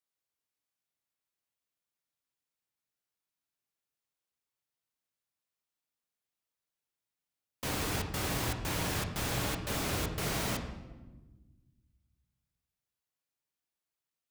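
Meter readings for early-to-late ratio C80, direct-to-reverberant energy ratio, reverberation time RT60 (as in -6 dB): 10.0 dB, 3.5 dB, 1.2 s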